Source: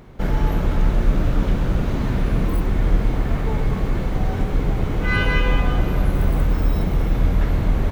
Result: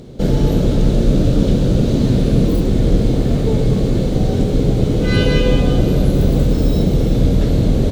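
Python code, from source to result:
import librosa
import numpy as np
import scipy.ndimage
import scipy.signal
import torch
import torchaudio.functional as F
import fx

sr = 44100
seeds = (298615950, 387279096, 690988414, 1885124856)

y = fx.graphic_eq(x, sr, hz=(125, 250, 500, 1000, 2000, 4000, 8000), db=(7, 7, 10, -8, -6, 10, 9))
y = y * 10.0 ** (1.0 / 20.0)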